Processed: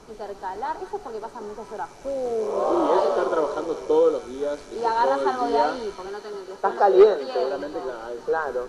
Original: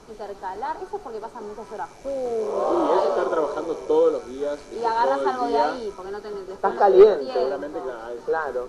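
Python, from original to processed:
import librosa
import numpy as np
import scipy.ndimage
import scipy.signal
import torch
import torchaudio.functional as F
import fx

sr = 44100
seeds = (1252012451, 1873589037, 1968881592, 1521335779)

p1 = fx.low_shelf(x, sr, hz=190.0, db=-10.0, at=(6.08, 7.53))
y = p1 + fx.echo_wet_highpass(p1, sr, ms=199, feedback_pct=68, hz=2200.0, wet_db=-10, dry=0)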